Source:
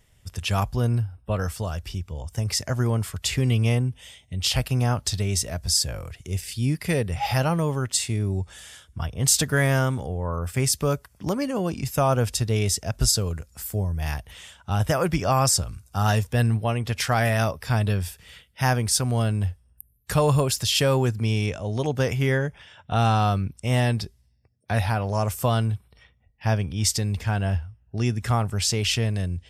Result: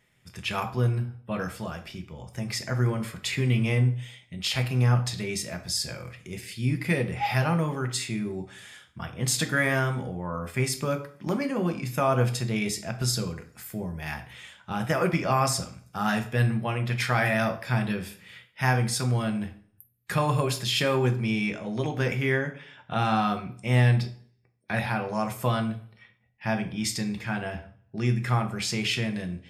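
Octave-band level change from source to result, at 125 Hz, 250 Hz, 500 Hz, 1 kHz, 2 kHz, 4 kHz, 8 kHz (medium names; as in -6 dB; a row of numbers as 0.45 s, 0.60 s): -3.5 dB, -1.0 dB, -3.0 dB, -2.0 dB, +1.0 dB, -4.5 dB, -8.0 dB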